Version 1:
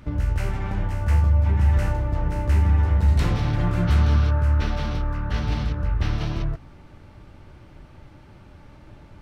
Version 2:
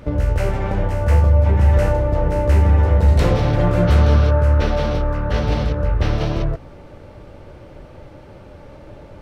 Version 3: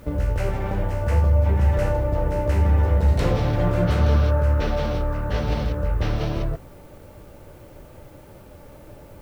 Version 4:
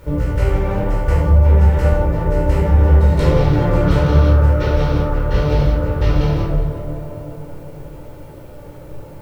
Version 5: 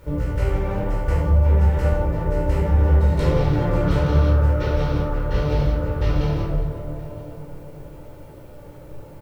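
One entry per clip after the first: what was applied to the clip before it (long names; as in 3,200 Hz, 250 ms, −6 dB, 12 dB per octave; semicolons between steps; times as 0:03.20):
parametric band 520 Hz +12.5 dB 0.79 octaves; level +4.5 dB
flanger 0.7 Hz, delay 3.3 ms, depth 7.3 ms, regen −83%; background noise blue −60 dBFS
tape delay 363 ms, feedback 75%, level −8 dB, low-pass 1,300 Hz; convolution reverb RT60 0.60 s, pre-delay 13 ms, DRR −1.5 dB; level −1 dB
single-tap delay 968 ms −24 dB; level −5 dB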